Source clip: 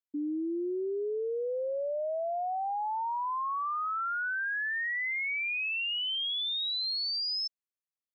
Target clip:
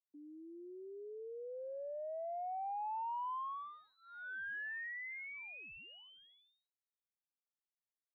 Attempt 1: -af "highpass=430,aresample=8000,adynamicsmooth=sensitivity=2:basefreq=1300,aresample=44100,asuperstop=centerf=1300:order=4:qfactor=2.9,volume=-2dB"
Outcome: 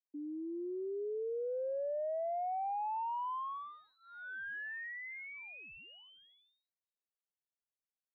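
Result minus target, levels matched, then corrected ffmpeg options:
500 Hz band +3.0 dB
-af "highpass=880,aresample=8000,adynamicsmooth=sensitivity=2:basefreq=1300,aresample=44100,asuperstop=centerf=1300:order=4:qfactor=2.9,volume=-2dB"

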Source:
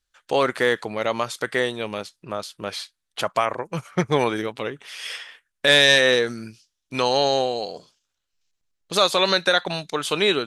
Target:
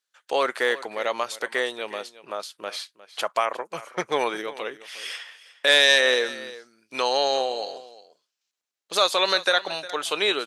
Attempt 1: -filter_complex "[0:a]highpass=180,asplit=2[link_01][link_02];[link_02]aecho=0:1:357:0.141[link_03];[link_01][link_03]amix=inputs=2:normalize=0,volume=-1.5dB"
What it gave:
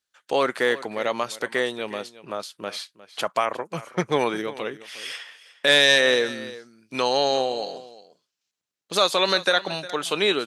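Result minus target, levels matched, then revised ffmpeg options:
250 Hz band +6.0 dB
-filter_complex "[0:a]highpass=430,asplit=2[link_01][link_02];[link_02]aecho=0:1:357:0.141[link_03];[link_01][link_03]amix=inputs=2:normalize=0,volume=-1.5dB"

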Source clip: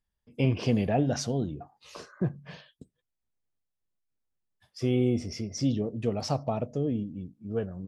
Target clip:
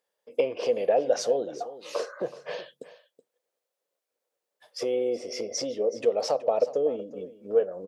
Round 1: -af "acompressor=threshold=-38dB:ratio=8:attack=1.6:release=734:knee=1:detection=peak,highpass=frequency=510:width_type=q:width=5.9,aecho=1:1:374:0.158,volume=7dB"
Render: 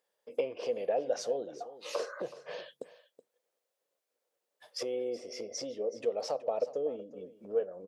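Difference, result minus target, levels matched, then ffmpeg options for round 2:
downward compressor: peak gain reduction +8 dB
-af "acompressor=threshold=-29dB:ratio=8:attack=1.6:release=734:knee=1:detection=peak,highpass=frequency=510:width_type=q:width=5.9,aecho=1:1:374:0.158,volume=7dB"

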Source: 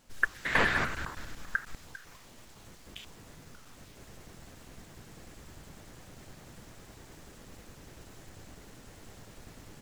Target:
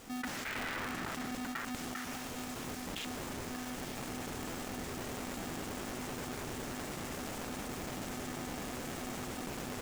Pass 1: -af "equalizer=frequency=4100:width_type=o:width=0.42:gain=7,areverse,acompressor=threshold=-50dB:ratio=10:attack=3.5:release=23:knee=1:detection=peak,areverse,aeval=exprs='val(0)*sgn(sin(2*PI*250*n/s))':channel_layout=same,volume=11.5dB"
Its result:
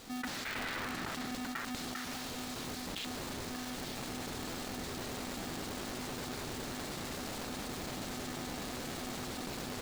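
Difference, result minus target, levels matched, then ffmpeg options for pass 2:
4,000 Hz band +3.0 dB
-af "equalizer=frequency=4100:width_type=o:width=0.42:gain=-4.5,areverse,acompressor=threshold=-50dB:ratio=10:attack=3.5:release=23:knee=1:detection=peak,areverse,aeval=exprs='val(0)*sgn(sin(2*PI*250*n/s))':channel_layout=same,volume=11.5dB"

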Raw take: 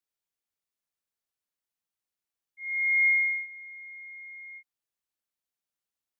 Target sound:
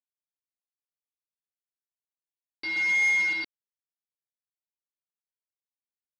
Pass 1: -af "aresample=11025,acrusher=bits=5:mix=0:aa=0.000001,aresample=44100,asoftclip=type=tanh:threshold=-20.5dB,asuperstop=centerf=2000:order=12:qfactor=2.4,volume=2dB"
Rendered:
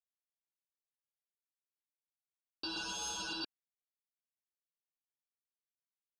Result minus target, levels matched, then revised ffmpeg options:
2,000 Hz band −7.5 dB
-af "aresample=11025,acrusher=bits=5:mix=0:aa=0.000001,aresample=44100,asoftclip=type=tanh:threshold=-20.5dB,volume=2dB"

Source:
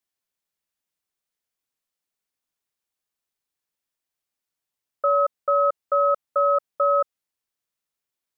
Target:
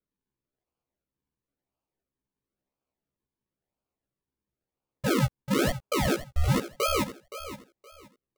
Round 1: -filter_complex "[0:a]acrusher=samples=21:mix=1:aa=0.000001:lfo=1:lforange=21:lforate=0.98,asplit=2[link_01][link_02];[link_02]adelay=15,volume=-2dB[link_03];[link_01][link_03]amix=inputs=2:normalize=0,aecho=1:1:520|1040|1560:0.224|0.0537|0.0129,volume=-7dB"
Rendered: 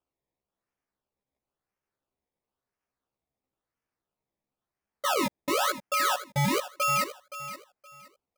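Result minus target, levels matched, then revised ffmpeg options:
sample-and-hold swept by an LFO: distortion −35 dB
-filter_complex "[0:a]acrusher=samples=46:mix=1:aa=0.000001:lfo=1:lforange=46:lforate=0.98,asplit=2[link_01][link_02];[link_02]adelay=15,volume=-2dB[link_03];[link_01][link_03]amix=inputs=2:normalize=0,aecho=1:1:520|1040|1560:0.224|0.0537|0.0129,volume=-7dB"

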